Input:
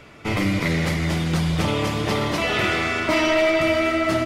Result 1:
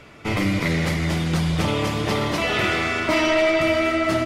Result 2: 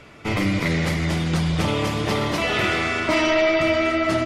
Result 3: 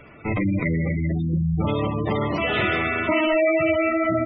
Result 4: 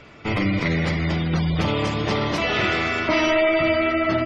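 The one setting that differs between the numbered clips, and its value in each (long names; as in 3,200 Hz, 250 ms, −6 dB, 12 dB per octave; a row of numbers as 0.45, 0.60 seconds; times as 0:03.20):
gate on every frequency bin, under each frame's peak: −55, −45, −15, −30 decibels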